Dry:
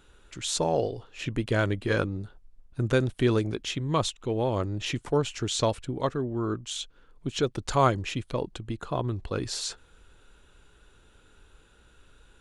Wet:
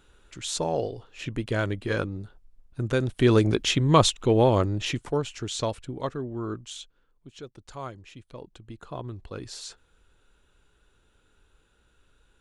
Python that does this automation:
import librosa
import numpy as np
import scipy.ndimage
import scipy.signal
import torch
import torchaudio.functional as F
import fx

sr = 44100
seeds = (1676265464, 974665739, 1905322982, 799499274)

y = fx.gain(x, sr, db=fx.line((2.96, -1.5), (3.5, 8.0), (4.41, 8.0), (5.27, -3.0), (6.62, -3.0), (7.27, -15.5), (8.08, -15.5), (8.89, -7.0)))